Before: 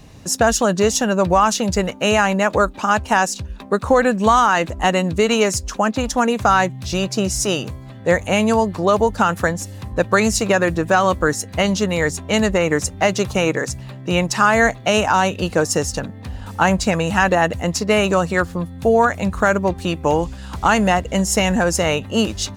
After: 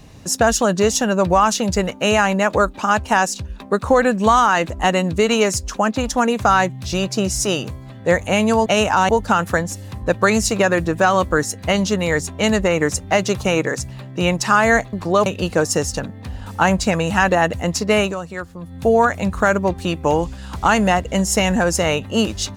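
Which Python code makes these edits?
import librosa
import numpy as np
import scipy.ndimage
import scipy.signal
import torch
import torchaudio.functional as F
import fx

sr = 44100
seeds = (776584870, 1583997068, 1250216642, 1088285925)

y = fx.edit(x, sr, fx.swap(start_s=8.66, length_s=0.33, other_s=14.83, other_length_s=0.43),
    fx.fade_down_up(start_s=18.01, length_s=0.74, db=-10.5, fade_s=0.14), tone=tone)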